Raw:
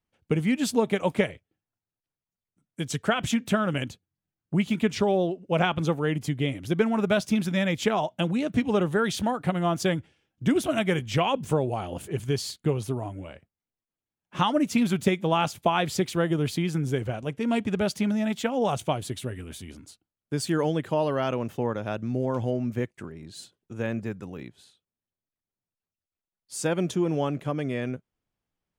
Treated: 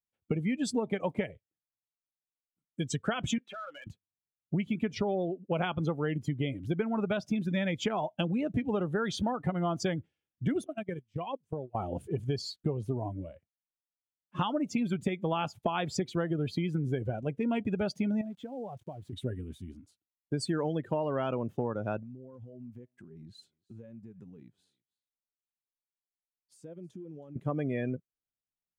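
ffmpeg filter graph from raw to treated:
-filter_complex "[0:a]asettb=1/sr,asplit=3[a][b][c];[a]atrim=end=3.384[d];[b]atrim=start=3.38:end=3.87,asetpts=PTS-STARTPTS,afade=t=in:d=0.004:c=qsin,afade=t=out:st=0.486:d=0.004:c=qsin,highpass=740,lowpass=4.3k,acompressor=threshold=-31dB:ratio=3:attack=3.2:release=140:knee=1:detection=peak,asoftclip=type=hard:threshold=-36.5dB[e];[c]atrim=start=3.866[f];[d][e]acrossfade=d=0.004:c1=hsin:c2=qsin[g];[g][f]acrossfade=d=0.004:c1=qsin:c2=hsin,asettb=1/sr,asplit=3[h][i][j];[h]atrim=end=10.644[k];[i]atrim=start=10.64:end=11.75,asetpts=PTS-STARTPTS,afade=t=in:d=0.004:c=qsin,afade=t=out:st=1.106:d=0.004:c=qsin,agate=range=-23dB:threshold=-25dB:ratio=16:release=100:detection=peak,bandreject=f=6.9k:w=24,acompressor=threshold=-30dB:ratio=10:attack=3.2:release=140:knee=1:detection=peak[l];[j]atrim=start=11.746[m];[k][l]acrossfade=d=0.004:c1=hsin:c2=qsin[n];[n][m]acrossfade=d=0.004:c1=qsin:c2=hsin,asettb=1/sr,asplit=3[o][p][q];[o]atrim=end=18.214[r];[p]atrim=start=18.21:end=19.13,asetpts=PTS-STARTPTS,afade=t=in:d=0.004:c=qsin,afade=t=out:st=0.916:d=0.004:c=qsin,highshelf=f=3.6k:g=-11.5,acompressor=threshold=-37dB:ratio=5:attack=3.2:release=140:knee=1:detection=peak,aeval=exprs='val(0)*gte(abs(val(0)),0.00316)':c=same[s];[q]atrim=start=19.126[t];[r][s]acrossfade=d=0.004:c1=hsin:c2=qsin[u];[u][t]acrossfade=d=0.004:c1=qsin:c2=hsin,asettb=1/sr,asplit=3[v][w][x];[v]atrim=end=21.994[y];[w]atrim=start=21.99:end=27.36,asetpts=PTS-STARTPTS,afade=t=in:d=0.004:c=qsin,afade=t=out:st=5.366:d=0.004:c=qsin,acompressor=threshold=-40dB:ratio=10:attack=3.2:release=140:knee=1:detection=peak,aecho=1:1:321:0.0891,atrim=end_sample=236817[z];[x]atrim=start=27.356[aa];[y][z]acrossfade=d=0.004:c1=hsin:c2=qsin[ab];[ab][aa]acrossfade=d=0.004:c1=qsin:c2=hsin,afftdn=nr=19:nf=-34,acompressor=threshold=-27dB:ratio=6"

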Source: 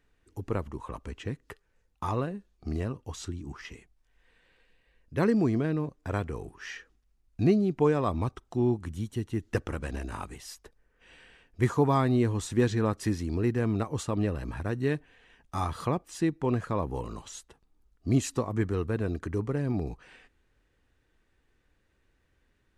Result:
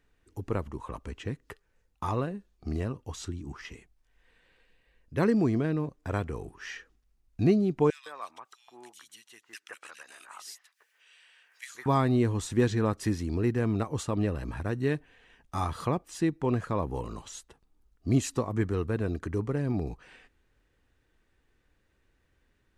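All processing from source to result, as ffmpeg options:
-filter_complex "[0:a]asettb=1/sr,asplit=3[a][b][c];[a]atrim=end=7.904[d];[b]atrim=start=7.9:end=11.86,asetpts=PTS-STARTPTS,afade=t=in:d=0.004:c=qsin,afade=t=out:st=3.956:d=0.004:c=qsin,highpass=1.5k,acompressor=mode=upward:threshold=-53dB:ratio=2.5:attack=3.2:release=140:knee=2.83:detection=peak,acrossover=split=1900[e][f];[e]adelay=160[g];[g][f]amix=inputs=2:normalize=0,atrim=end_sample=174636[h];[c]atrim=start=11.856[i];[d][h]acrossfade=d=0.004:c1=hsin:c2=qsin[j];[j][i]acrossfade=d=0.004:c1=qsin:c2=hsin"

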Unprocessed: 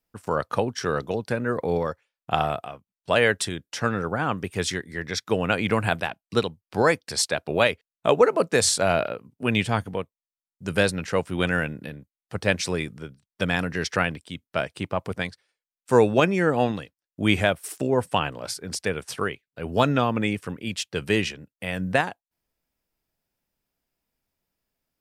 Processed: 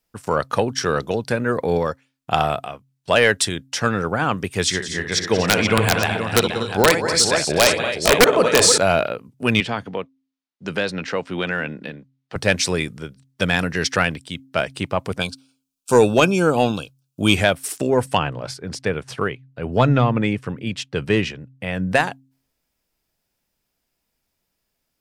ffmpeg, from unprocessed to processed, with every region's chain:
-filter_complex "[0:a]asettb=1/sr,asplit=3[a][b][c];[a]atrim=end=4.644[d];[b]atrim=start=4.64:end=8.78,asetpts=PTS-STARTPTS,afade=t=in:d=0.004:c=qsin,afade=t=out:st=4.136:d=0.004:c=qsin,lowpass=10k,aecho=1:1:64|183|239|269|478|838:0.316|0.224|0.266|0.168|0.376|0.251,atrim=end_sample=182574,aeval=exprs='(mod(2.51*val(0)+1,2)-1)/2.51':c=same[e];[c]atrim=start=8.776[f];[d][e]acrossfade=d=0.004:c1=hsin:c2=qsin[g];[g][f]acrossfade=d=0.004:c1=qsin:c2=hsin,asettb=1/sr,asplit=3[h][i][j];[h]atrim=end=9.604[k];[i]atrim=start=9.6:end=12.36,asetpts=PTS-STARTPTS,afade=t=in:d=0.004:c=qsin,afade=t=out:st=2.756:d=0.004:c=qsin,acrossover=split=150 5300:gain=0.2 1 0.0794[l][m][n];[l][m][n]amix=inputs=3:normalize=0,acompressor=threshold=-26dB:ratio=2:attack=3.2:release=140:knee=1:detection=peak[o];[j]atrim=start=12.356[p];[k][o]acrossfade=d=0.004:c1=hsin:c2=qsin[q];[q][p]acrossfade=d=0.004:c1=qsin:c2=hsin,asettb=1/sr,asplit=3[r][s][t];[r]atrim=end=15.204[u];[s]atrim=start=15.2:end=17.35,asetpts=PTS-STARTPTS,afade=t=in:d=0.004:c=qsin,afade=t=out:st=2.146:d=0.004:c=qsin,asuperstop=centerf=1900:order=8:qfactor=2.6,highshelf=f=4.8k:g=7[v];[t]atrim=start=17.346[w];[u][v]acrossfade=d=0.004:c1=hsin:c2=qsin[x];[x][w]acrossfade=d=0.004:c1=qsin:c2=hsin,asettb=1/sr,asplit=3[y][z][aa];[y]atrim=end=18.174[ab];[z]atrim=start=18.17:end=21.92,asetpts=PTS-STARTPTS,afade=t=in:d=0.004:c=qsin,afade=t=out:st=3.746:d=0.004:c=qsin,lowpass=f=1.8k:p=1,equalizer=f=130:w=7.5:g=11.5[ac];[aa]atrim=start=21.916[ad];[ab][ac]acrossfade=d=0.004:c1=hsin:c2=qsin[ae];[ae][ad]acrossfade=d=0.004:c1=qsin:c2=hsin,equalizer=f=6k:t=o:w=2.4:g=4,bandreject=f=133.4:t=h:w=4,bandreject=f=266.8:t=h:w=4,acontrast=43,volume=-1dB"

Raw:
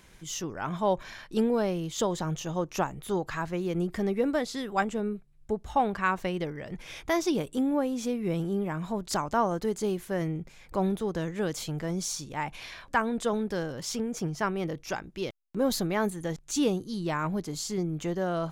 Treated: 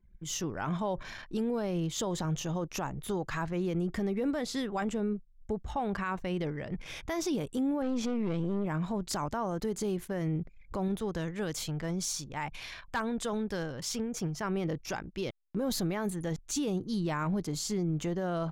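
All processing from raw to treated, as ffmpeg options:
-filter_complex "[0:a]asettb=1/sr,asplit=3[a][b][c];[a]atrim=end=7.824[d];[b]atrim=start=7.82:end=8.66,asetpts=PTS-STARTPTS,afade=t=in:d=0.004:c=qsin,afade=t=out:st=0.836:d=0.004:c=qsin,lowpass=4.9k,acontrast=87,aeval=exprs='(tanh(12.6*val(0)+0.6)-tanh(0.6))/12.6':c=same[e];[c]atrim=start=8.656[f];[d][e]acrossfade=d=0.004:c1=hsin:c2=qsin[g];[g][f]acrossfade=d=0.004:c1=qsin:c2=hsin,asettb=1/sr,asplit=3[h][i][j];[h]atrim=end=10.884[k];[i]atrim=start=10.88:end=14.41,asetpts=PTS-STARTPTS,afade=t=in:d=0.004:c=qsin,afade=t=out:st=3.526:d=0.004:c=qsin,equalizer=f=270:w=0.33:g=-4.5,asoftclip=type=hard:threshold=-20.5dB[l];[j]atrim=start=14.406[m];[k][l]acrossfade=d=0.004:c1=hsin:c2=qsin[n];[n][m]acrossfade=d=0.004:c1=qsin:c2=hsin,anlmdn=0.0158,bass=f=250:g=3,treble=f=4k:g=0,alimiter=limit=-24dB:level=0:latency=1:release=31"

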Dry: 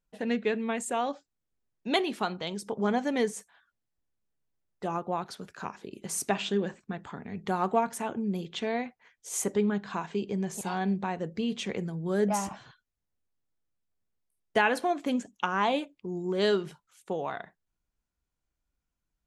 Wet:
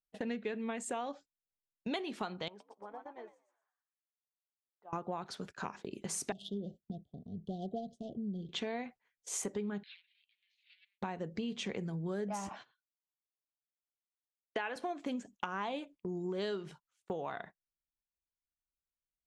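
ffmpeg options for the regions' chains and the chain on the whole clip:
-filter_complex "[0:a]asettb=1/sr,asplit=3[a][b][c];[a]atrim=end=2.484[d];[b]atrim=start=2.48:end=4.93,asetpts=PTS-STARTPTS,afade=t=in:d=0.004:c=qsin,afade=t=out:st=2.446:d=0.004:c=qsin,bandpass=f=870:t=q:w=1.7,acompressor=threshold=-47dB:ratio=4:attack=3.2:release=140:knee=1:detection=peak,asplit=5[e][f][g][h][i];[f]adelay=118,afreqshift=77,volume=-4dB[j];[g]adelay=236,afreqshift=154,volume=-13.1dB[k];[h]adelay=354,afreqshift=231,volume=-22.2dB[l];[i]adelay=472,afreqshift=308,volume=-31.4dB[m];[e][j][k][l][m]amix=inputs=5:normalize=0,atrim=end_sample=108045[n];[c]atrim=start=4.926[o];[d][n]acrossfade=d=0.004:c1=hsin:c2=qsin[p];[p][o]acrossfade=d=0.004:c1=qsin:c2=hsin,asettb=1/sr,asplit=3[q][r][s];[q]atrim=end=6.324[t];[r]atrim=start=6.32:end=8.49,asetpts=PTS-STARTPTS,afade=t=in:d=0.004:c=qsin,afade=t=out:st=2.166:d=0.004:c=qsin,equalizer=f=480:t=o:w=2.4:g=-10.5,adynamicsmooth=sensitivity=3.5:basefreq=1.7k,asuperstop=centerf=1500:order=20:qfactor=0.62[u];[s]atrim=start=8.486[v];[t][u]acrossfade=d=0.004:c1=hsin:c2=qsin[w];[w][v]acrossfade=d=0.004:c1=qsin:c2=hsin,asettb=1/sr,asplit=3[x][y][z];[x]atrim=end=9.834[aa];[y]atrim=start=9.83:end=11.02,asetpts=PTS-STARTPTS,afade=t=in:d=0.004:c=qsin,afade=t=out:st=1.186:d=0.004:c=qsin,asoftclip=type=hard:threshold=-34dB,asuperpass=centerf=3000:order=8:qfactor=1.4[ab];[z]atrim=start=11.016[ac];[aa][ab]acrossfade=d=0.004:c1=hsin:c2=qsin[ad];[ad][ac]acrossfade=d=0.004:c1=qsin:c2=hsin,asettb=1/sr,asplit=3[ae][af][ag];[ae]atrim=end=12.504[ah];[af]atrim=start=12.5:end=14.76,asetpts=PTS-STARTPTS,afade=t=in:d=0.004:c=qsin,afade=t=out:st=2.256:d=0.004:c=qsin,highpass=310,lowpass=3.5k,aemphasis=mode=production:type=50kf[ai];[ag]atrim=start=14.756[aj];[ah][ai]acrossfade=d=0.004:c1=hsin:c2=qsin[ak];[ak][aj]acrossfade=d=0.004:c1=qsin:c2=hsin,lowpass=8.3k,agate=range=-19dB:threshold=-47dB:ratio=16:detection=peak,acompressor=threshold=-35dB:ratio=6"

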